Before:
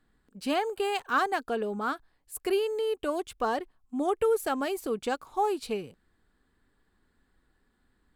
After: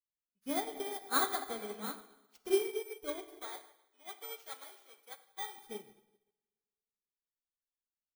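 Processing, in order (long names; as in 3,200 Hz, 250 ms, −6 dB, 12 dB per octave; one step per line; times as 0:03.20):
samples in bit-reversed order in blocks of 16 samples
0:03.28–0:05.58: high-pass filter 930 Hz 12 dB per octave
convolution reverb RT60 2.2 s, pre-delay 7 ms, DRR 1 dB
expander for the loud parts 2.5 to 1, over −49 dBFS
level −2.5 dB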